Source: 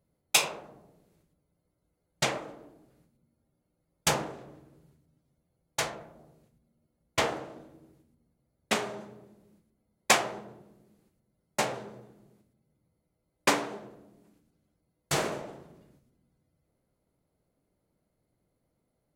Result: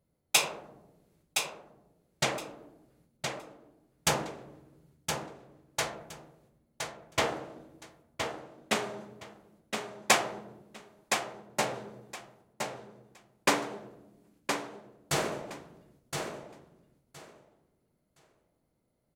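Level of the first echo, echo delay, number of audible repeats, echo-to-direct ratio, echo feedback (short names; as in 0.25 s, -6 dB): -6.0 dB, 1.017 s, 2, -6.0 dB, 18%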